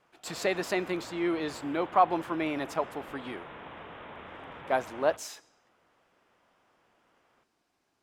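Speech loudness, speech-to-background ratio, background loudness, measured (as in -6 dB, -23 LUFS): -31.0 LUFS, 14.5 dB, -45.5 LUFS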